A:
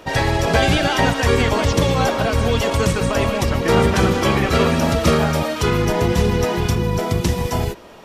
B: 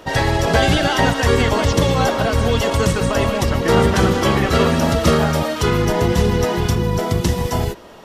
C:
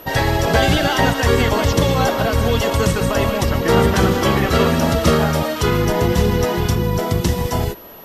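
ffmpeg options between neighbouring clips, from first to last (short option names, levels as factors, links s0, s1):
-af "bandreject=f=2400:w=12,volume=1.12"
-af "aeval=exprs='val(0)+0.01*sin(2*PI*12000*n/s)':c=same"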